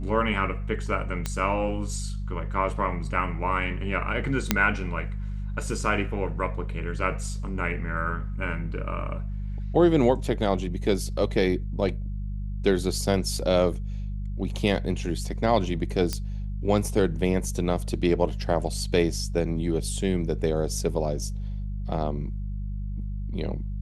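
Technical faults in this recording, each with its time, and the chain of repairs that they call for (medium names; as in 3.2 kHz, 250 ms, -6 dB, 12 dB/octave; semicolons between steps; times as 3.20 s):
hum 50 Hz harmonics 4 -31 dBFS
1.26 s: pop -13 dBFS
4.51 s: pop -3 dBFS
16.13 s: pop -13 dBFS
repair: de-click; de-hum 50 Hz, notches 4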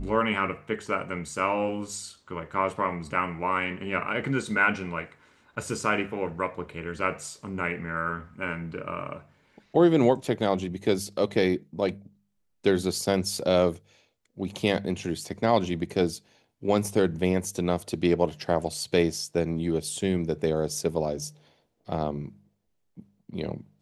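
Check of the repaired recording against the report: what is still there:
nothing left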